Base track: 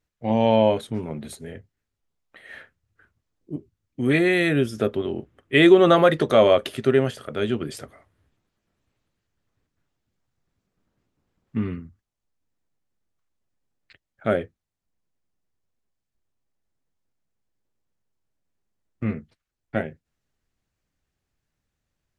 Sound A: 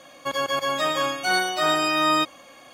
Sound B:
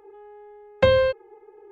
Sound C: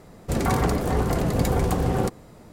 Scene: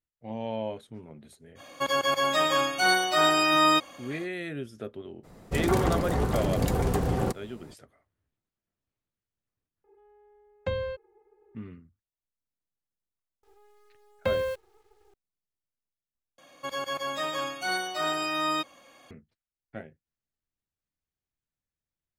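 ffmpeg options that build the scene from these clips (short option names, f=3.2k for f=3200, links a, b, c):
-filter_complex "[1:a]asplit=2[a][b];[2:a]asplit=2[c][d];[0:a]volume=-15dB[e];[c]lowshelf=f=140:g=9.5[f];[d]acrusher=bits=7:dc=4:mix=0:aa=0.000001[g];[e]asplit=3[h][i][j];[h]atrim=end=9.844[k];[f]atrim=end=1.71,asetpts=PTS-STARTPTS,volume=-14.5dB[l];[i]atrim=start=11.546:end=16.384[m];[b]atrim=end=2.73,asetpts=PTS-STARTPTS,volume=-7.5dB[n];[j]atrim=start=19.106[o];[a]atrim=end=2.73,asetpts=PTS-STARTPTS,volume=-0.5dB,afade=t=in:d=0.05,afade=t=out:st=2.68:d=0.05,adelay=1550[p];[3:a]atrim=end=2.52,asetpts=PTS-STARTPTS,volume=-4dB,afade=t=in:d=0.02,afade=t=out:st=2.5:d=0.02,adelay=5230[q];[g]atrim=end=1.71,asetpts=PTS-STARTPTS,volume=-10dB,afade=t=in:d=0.004:c=hsin,afade=t=out:st=1.706:d=0.004:c=hsin,adelay=13430[r];[k][l]acrossfade=d=0.004:c1=hsin:c2=hsin[s];[s][m]acrossfade=d=0.004:c1=hsin:c2=hsin[t];[t][n]acrossfade=d=0.004:c1=hsin:c2=hsin[u];[u][o]acrossfade=d=0.004:c1=hsin:c2=hsin[v];[v][p][q][r]amix=inputs=4:normalize=0"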